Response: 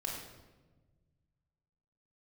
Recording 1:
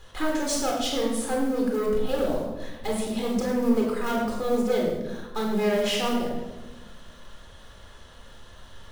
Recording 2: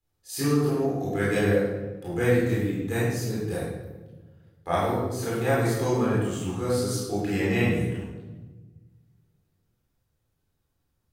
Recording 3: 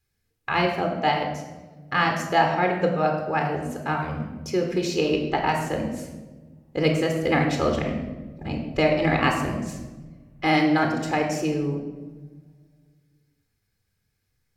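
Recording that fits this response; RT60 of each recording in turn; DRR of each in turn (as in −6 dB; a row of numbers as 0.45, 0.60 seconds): 1; 1.3, 1.3, 1.3 seconds; −1.5, −8.5, 2.5 decibels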